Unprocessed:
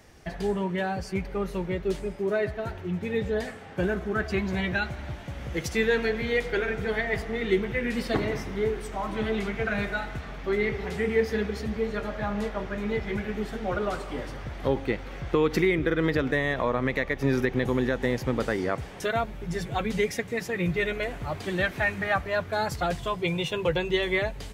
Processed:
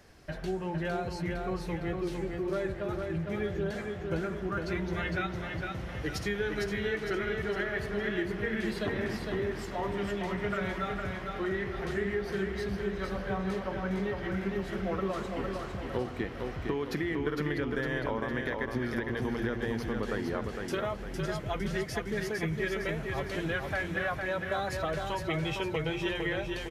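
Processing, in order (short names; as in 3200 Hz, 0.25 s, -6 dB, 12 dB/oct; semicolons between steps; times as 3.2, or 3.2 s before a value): bell 8500 Hz -3.5 dB 0.25 oct; de-hum 63.83 Hz, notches 6; compressor, threshold -26 dBFS, peak gain reduction 8 dB; feedback echo 0.42 s, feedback 46%, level -4.5 dB; speed mistake 48 kHz file played as 44.1 kHz; gain -3 dB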